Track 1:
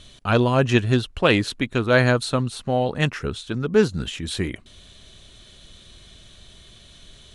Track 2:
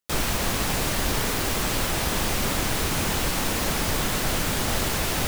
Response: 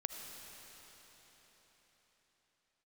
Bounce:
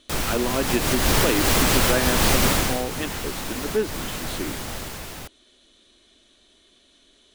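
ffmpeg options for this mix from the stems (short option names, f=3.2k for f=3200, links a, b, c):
-filter_complex "[0:a]lowshelf=f=200:t=q:w=3:g=-11,volume=-8.5dB,asplit=2[a][b];[1:a]dynaudnorm=f=250:g=7:m=8dB,volume=-0.5dB,afade=t=out:st=2.43:d=0.42:silence=0.237137[c];[b]apad=whole_len=232626[d];[c][d]sidechaincompress=threshold=-24dB:ratio=8:attack=43:release=268[e];[a][e]amix=inputs=2:normalize=0"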